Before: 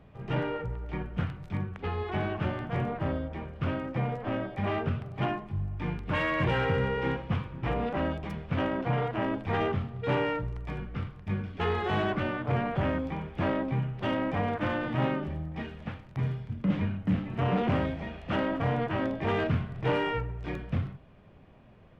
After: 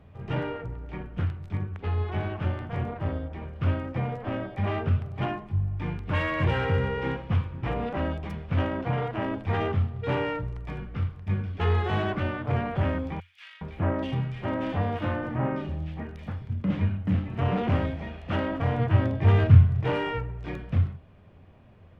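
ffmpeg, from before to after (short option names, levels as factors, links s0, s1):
-filter_complex "[0:a]asplit=3[s0][s1][s2];[s0]afade=t=out:st=0.52:d=0.02[s3];[s1]tremolo=f=210:d=0.462,afade=t=in:st=0.52:d=0.02,afade=t=out:st=3.41:d=0.02[s4];[s2]afade=t=in:st=3.41:d=0.02[s5];[s3][s4][s5]amix=inputs=3:normalize=0,asettb=1/sr,asplit=3[s6][s7][s8];[s6]atrim=end=13.204[s9];[s7]atrim=start=13.2:end=16.42,asetpts=PTS-STARTPTS,afade=t=in:d=0.004:c=qsin,afade=t=out:st=3.216:d=0.004:c=qsin,acrossover=split=2200[s10][s11];[s10]adelay=410[s12];[s12][s11]amix=inputs=2:normalize=0,atrim=end_sample=142002[s13];[s8]atrim=start=16.416[s14];[s9][s13]acrossfade=d=0.004:c1=hsin:c2=qsin[s15];[s15][s14]acrossfade=d=0.004:c1=qsin:c2=hsin,asettb=1/sr,asplit=3[s16][s17][s18];[s16]atrim=end=18.794[s19];[s17]atrim=start=18.79:end=19.82,asetpts=PTS-STARTPTS,afade=t=in:d=0.004:c=qsin,afade=t=out:st=1.026:d=0.004:c=qsin,equalizer=f=110:t=o:w=0.77:g=13.5[s20];[s18]atrim=start=19.816[s21];[s19][s20]acrossfade=d=0.004:c1=hsin:c2=qsin[s22];[s22][s21]acrossfade=d=0.004:c1=qsin:c2=hsin,equalizer=f=88:t=o:w=0.33:g=11"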